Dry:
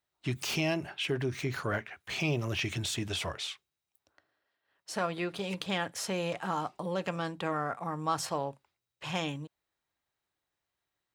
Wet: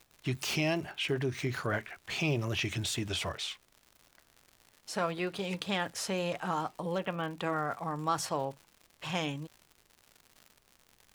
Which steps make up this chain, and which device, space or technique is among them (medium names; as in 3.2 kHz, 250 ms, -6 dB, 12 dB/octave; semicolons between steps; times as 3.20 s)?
6.98–7.39 s: elliptic low-pass 3.3 kHz; vinyl LP (wow and flutter; crackle 140 per s -43 dBFS; pink noise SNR 36 dB)